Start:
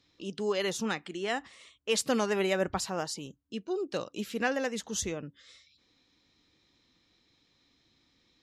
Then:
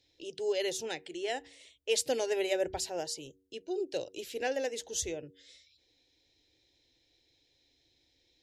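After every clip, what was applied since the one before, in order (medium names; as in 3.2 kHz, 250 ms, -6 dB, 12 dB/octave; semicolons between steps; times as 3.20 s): static phaser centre 490 Hz, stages 4; de-hum 94.12 Hz, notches 5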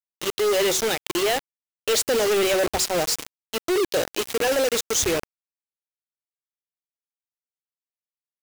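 companded quantiser 2-bit; trim +6 dB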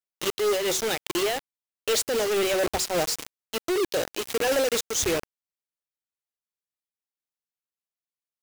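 random flutter of the level, depth 60%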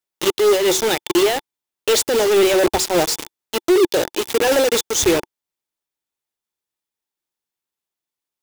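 small resonant body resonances 350/880/3500 Hz, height 6 dB, ringing for 25 ms; trim +6.5 dB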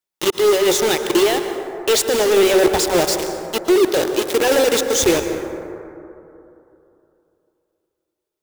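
plate-style reverb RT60 3 s, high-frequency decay 0.3×, pre-delay 105 ms, DRR 7 dB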